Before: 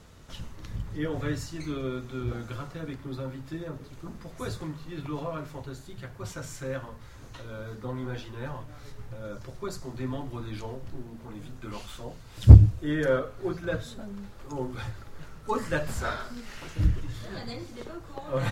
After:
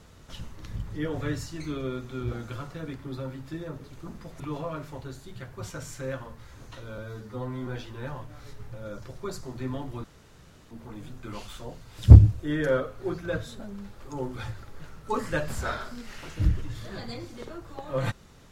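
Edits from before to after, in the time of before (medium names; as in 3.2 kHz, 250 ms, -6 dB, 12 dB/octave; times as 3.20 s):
4.40–5.02 s: delete
7.60–8.06 s: stretch 1.5×
10.43–11.10 s: room tone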